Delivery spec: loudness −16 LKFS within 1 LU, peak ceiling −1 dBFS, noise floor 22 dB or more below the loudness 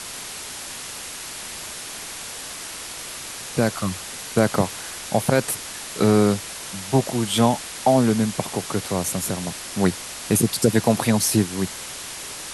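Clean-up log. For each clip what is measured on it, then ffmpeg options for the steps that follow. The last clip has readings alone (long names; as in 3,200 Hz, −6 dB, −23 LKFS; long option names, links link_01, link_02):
background noise floor −35 dBFS; target noise floor −46 dBFS; integrated loudness −23.5 LKFS; sample peak −4.0 dBFS; target loudness −16.0 LKFS
→ -af "afftdn=noise_reduction=11:noise_floor=-35"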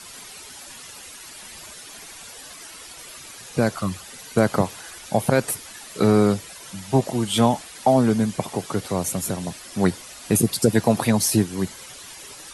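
background noise floor −41 dBFS; target noise floor −44 dBFS
→ -af "afftdn=noise_reduction=6:noise_floor=-41"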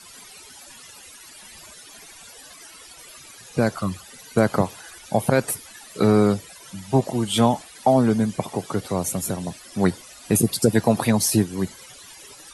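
background noise floor −45 dBFS; integrated loudness −22.0 LKFS; sample peak −4.5 dBFS; target loudness −16.0 LKFS
→ -af "volume=6dB,alimiter=limit=-1dB:level=0:latency=1"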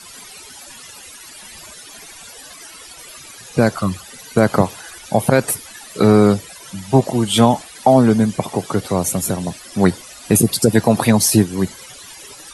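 integrated loudness −16.5 LKFS; sample peak −1.0 dBFS; background noise floor −39 dBFS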